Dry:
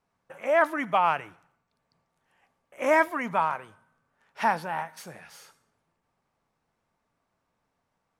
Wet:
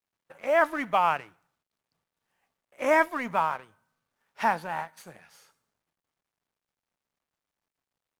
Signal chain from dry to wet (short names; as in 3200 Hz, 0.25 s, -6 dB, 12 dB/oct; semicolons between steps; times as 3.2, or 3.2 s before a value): G.711 law mismatch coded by A; 4.49–5.18 notch 5400 Hz, Q 13